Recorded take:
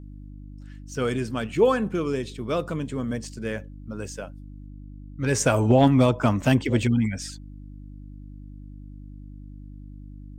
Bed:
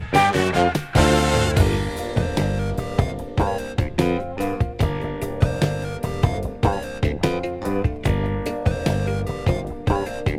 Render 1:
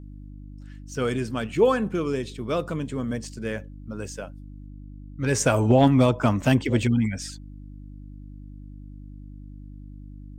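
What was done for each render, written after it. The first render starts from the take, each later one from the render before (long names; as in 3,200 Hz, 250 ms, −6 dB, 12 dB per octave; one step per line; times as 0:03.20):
no processing that can be heard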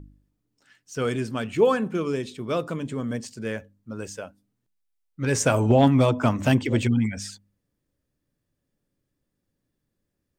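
hum removal 50 Hz, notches 6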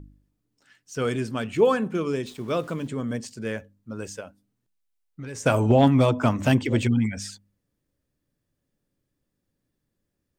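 0:02.26–0:02.88: centre clipping without the shift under −46.5 dBFS
0:04.20–0:05.46: downward compressor, threshold −33 dBFS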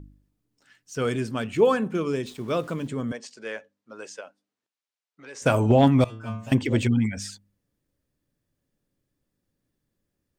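0:03.12–0:05.42: band-pass filter 490–6,400 Hz
0:06.04–0:06.52: stiff-string resonator 110 Hz, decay 0.62 s, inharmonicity 0.002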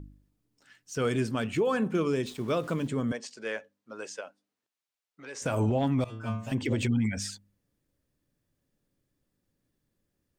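downward compressor, threshold −20 dBFS, peak gain reduction 8 dB
brickwall limiter −18.5 dBFS, peak gain reduction 10 dB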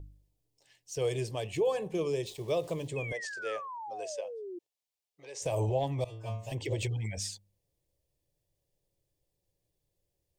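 phaser with its sweep stopped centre 580 Hz, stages 4
0:02.96–0:04.59: sound drawn into the spectrogram fall 340–2,600 Hz −41 dBFS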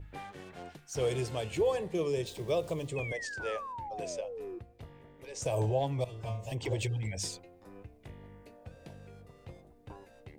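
mix in bed −28.5 dB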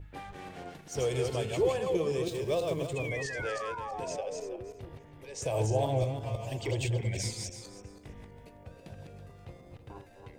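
feedback delay that plays each chunk backwards 163 ms, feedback 41%, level −3 dB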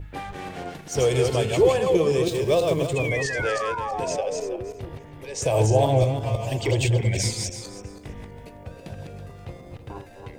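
level +9.5 dB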